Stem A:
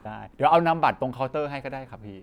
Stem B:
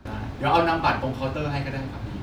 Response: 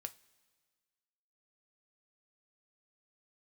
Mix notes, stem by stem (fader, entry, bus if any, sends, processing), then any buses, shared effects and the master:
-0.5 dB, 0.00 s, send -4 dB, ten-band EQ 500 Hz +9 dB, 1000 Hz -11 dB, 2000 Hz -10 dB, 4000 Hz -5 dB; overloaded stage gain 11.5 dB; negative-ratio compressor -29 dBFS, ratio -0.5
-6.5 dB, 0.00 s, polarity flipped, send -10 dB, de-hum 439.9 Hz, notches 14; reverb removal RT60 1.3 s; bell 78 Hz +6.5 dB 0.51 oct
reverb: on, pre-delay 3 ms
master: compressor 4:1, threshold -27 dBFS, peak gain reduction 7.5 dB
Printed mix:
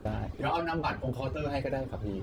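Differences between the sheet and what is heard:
stem A -0.5 dB -> -6.5 dB; stem B: polarity flipped

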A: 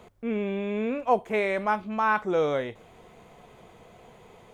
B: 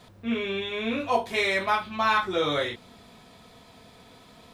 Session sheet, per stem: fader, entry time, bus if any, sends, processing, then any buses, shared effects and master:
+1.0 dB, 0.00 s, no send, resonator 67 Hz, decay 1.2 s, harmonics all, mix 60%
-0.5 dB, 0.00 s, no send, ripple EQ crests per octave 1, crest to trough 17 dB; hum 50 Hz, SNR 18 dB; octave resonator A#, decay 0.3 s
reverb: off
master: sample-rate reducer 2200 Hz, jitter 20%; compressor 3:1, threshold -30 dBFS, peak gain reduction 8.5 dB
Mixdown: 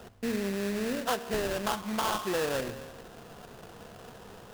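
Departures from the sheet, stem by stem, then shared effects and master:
stem A +1.0 dB -> +10.0 dB; stem B -0.5 dB -> -7.0 dB

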